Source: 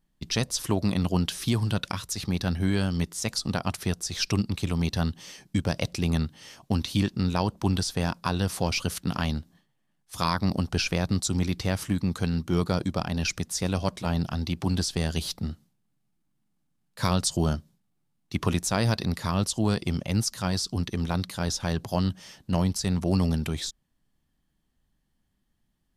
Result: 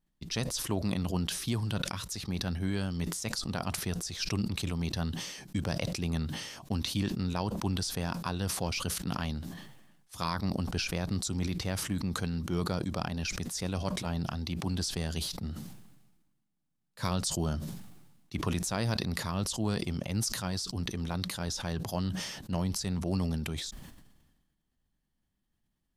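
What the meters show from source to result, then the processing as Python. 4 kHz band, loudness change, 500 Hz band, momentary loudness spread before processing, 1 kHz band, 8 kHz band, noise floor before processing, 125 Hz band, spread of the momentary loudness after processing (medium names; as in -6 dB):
-4.0 dB, -5.5 dB, -6.0 dB, 5 LU, -6.0 dB, -3.5 dB, -74 dBFS, -6.0 dB, 5 LU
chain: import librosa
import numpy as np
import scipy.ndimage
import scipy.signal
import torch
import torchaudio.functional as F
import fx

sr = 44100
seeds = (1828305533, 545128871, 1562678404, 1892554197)

y = fx.sustainer(x, sr, db_per_s=45.0)
y = F.gain(torch.from_numpy(y), -7.0).numpy()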